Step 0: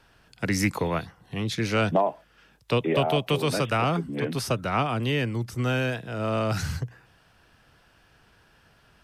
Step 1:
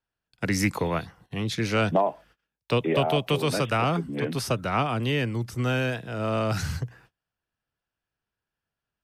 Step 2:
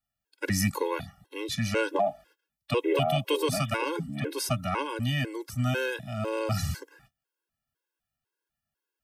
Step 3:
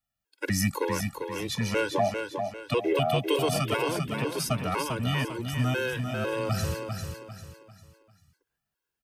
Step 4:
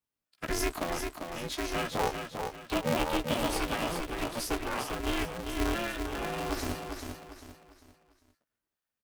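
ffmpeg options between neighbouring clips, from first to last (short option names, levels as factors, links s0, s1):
-af "agate=range=0.0355:threshold=0.00251:ratio=16:detection=peak"
-af "highshelf=f=7400:g=10,afftfilt=real='re*gt(sin(2*PI*2*pts/sr)*(1-2*mod(floor(b*sr/1024/280),2)),0)':imag='im*gt(sin(2*PI*2*pts/sr)*(1-2*mod(floor(b*sr/1024/280),2)),0)':win_size=1024:overlap=0.75"
-af "aecho=1:1:397|794|1191|1588:0.501|0.18|0.065|0.0234"
-filter_complex "[0:a]asplit=2[s0][s1];[s1]adelay=15,volume=0.531[s2];[s0][s2]amix=inputs=2:normalize=0,aeval=exprs='val(0)*sgn(sin(2*PI*170*n/s))':c=same,volume=0.531"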